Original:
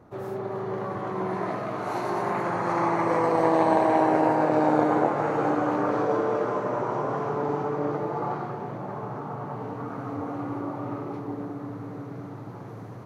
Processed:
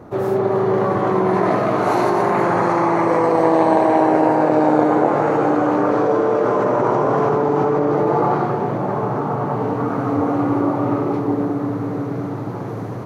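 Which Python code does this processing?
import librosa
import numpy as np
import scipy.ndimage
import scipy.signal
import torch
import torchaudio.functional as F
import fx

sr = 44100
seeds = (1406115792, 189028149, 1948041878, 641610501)

p1 = fx.peak_eq(x, sr, hz=380.0, db=3.5, octaves=2.0)
p2 = fx.over_compress(p1, sr, threshold_db=-27.0, ratio=-0.5)
p3 = p1 + (p2 * librosa.db_to_amplitude(-1.0))
y = p3 * librosa.db_to_amplitude(3.5)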